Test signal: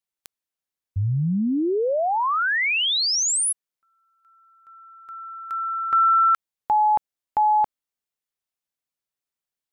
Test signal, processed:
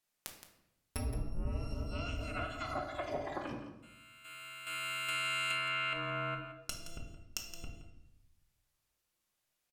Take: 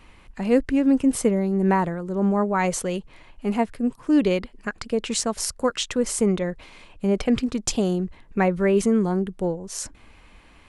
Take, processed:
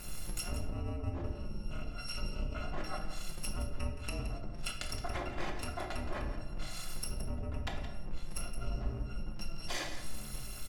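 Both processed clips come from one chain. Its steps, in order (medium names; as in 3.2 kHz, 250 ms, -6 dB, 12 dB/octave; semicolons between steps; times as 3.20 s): bit-reversed sample order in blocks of 256 samples; low-pass that closes with the level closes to 710 Hz, closed at -20 dBFS; compression 16:1, threshold -42 dBFS; on a send: delay 170 ms -11.5 dB; on the sum: simulated room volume 290 m³, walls mixed, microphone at 0.91 m; trim +5.5 dB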